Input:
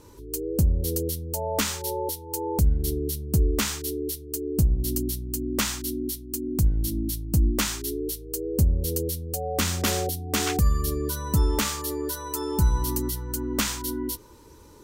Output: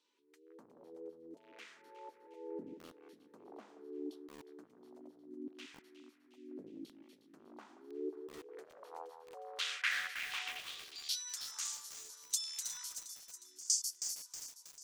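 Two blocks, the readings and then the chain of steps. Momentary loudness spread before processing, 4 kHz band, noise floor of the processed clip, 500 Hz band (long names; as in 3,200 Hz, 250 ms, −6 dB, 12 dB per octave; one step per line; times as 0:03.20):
7 LU, −10.0 dB, −67 dBFS, −19.5 dB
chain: wavefolder on the positive side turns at −23 dBFS
high-pass filter 52 Hz
gain on a spectral selection 0:12.94–0:14.23, 420–4,400 Hz −20 dB
first difference
in parallel at +3 dB: downward compressor 6 to 1, threshold −39 dBFS, peak gain reduction 14.5 dB
on the sum: auto-filter band-pass saw down 0.73 Hz 300–3,600 Hz
on a send: delay that swaps between a low-pass and a high-pass 180 ms, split 1,900 Hz, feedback 74%, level −11 dB
on the sum: band-pass filter sweep 250 Hz → 6,700 Hz, 0:07.83–0:11.50
feedback echo at a low word length 319 ms, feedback 55%, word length 10 bits, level −8 dB
level +16.5 dB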